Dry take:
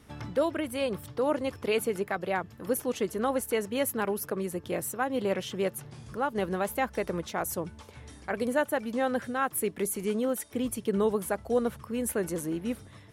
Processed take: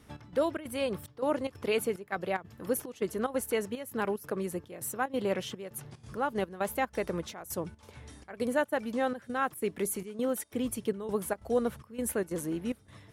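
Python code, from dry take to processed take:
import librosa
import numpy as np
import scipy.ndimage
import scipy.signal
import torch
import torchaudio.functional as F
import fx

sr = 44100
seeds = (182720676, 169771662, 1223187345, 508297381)

y = fx.step_gate(x, sr, bpm=184, pattern='xx..xxx.xxx', floor_db=-12.0, edge_ms=4.5)
y = y * librosa.db_to_amplitude(-1.5)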